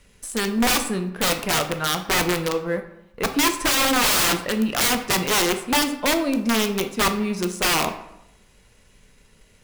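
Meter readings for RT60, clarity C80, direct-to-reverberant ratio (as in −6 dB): 0.85 s, 13.5 dB, 6.5 dB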